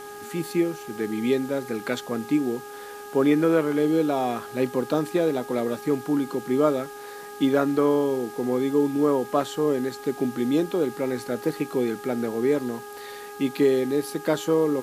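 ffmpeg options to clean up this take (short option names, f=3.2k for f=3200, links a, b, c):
-af "adeclick=t=4,bandreject=f=412:t=h:w=4,bandreject=f=824:t=h:w=4,bandreject=f=1.236k:t=h:w=4,bandreject=f=1.648k:t=h:w=4,bandreject=f=800:w=30,afwtdn=0.004"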